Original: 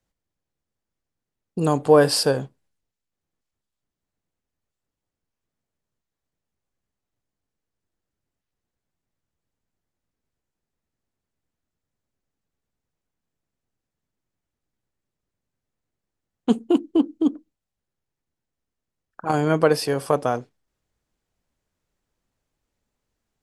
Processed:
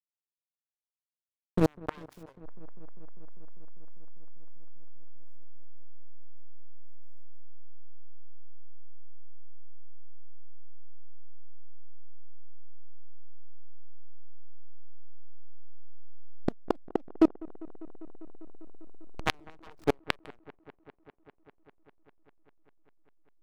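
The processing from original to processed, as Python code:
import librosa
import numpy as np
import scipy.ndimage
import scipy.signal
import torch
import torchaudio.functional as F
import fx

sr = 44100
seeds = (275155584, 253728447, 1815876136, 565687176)

p1 = fx.self_delay(x, sr, depth_ms=0.99)
p2 = fx.dynamic_eq(p1, sr, hz=150.0, q=4.2, threshold_db=-41.0, ratio=4.0, max_db=-5)
p3 = fx.backlash(p2, sr, play_db=-18.0)
p4 = fx.gate_flip(p3, sr, shuts_db=-16.0, range_db=-40)
p5 = p4 + fx.echo_wet_lowpass(p4, sr, ms=199, feedback_pct=83, hz=1800.0, wet_db=-22.0, dry=0)
y = F.gain(torch.from_numpy(p5), 4.5).numpy()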